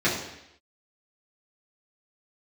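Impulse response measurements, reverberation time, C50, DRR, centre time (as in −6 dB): 0.80 s, 4.5 dB, −9.5 dB, 43 ms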